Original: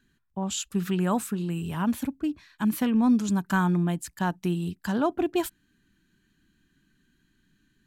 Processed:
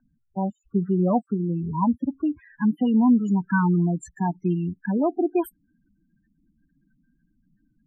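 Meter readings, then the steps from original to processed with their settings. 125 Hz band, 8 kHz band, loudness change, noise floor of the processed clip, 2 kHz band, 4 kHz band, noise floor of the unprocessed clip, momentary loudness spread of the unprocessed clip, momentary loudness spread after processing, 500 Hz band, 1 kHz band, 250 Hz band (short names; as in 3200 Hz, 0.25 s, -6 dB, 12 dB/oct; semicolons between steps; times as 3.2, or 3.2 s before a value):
+3.5 dB, under -10 dB, +3.5 dB, -71 dBFS, 0.0 dB, under -10 dB, -71 dBFS, 8 LU, 9 LU, +3.5 dB, +2.5 dB, +3.5 dB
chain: loudest bins only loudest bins 8; low-pass sweep 750 Hz -> 14000 Hz, 1.48–5.05; gain +3.5 dB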